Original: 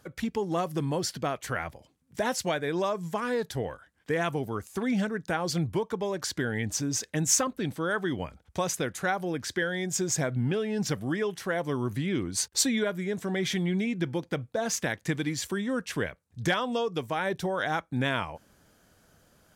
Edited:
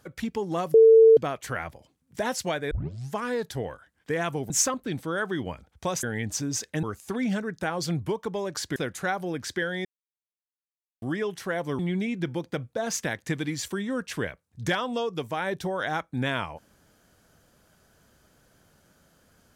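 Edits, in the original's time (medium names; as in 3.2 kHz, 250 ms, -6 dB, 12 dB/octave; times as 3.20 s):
0.74–1.17 s: bleep 448 Hz -10.5 dBFS
2.71 s: tape start 0.43 s
4.50–6.43 s: swap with 7.23–8.76 s
9.85–11.02 s: mute
11.79–13.58 s: delete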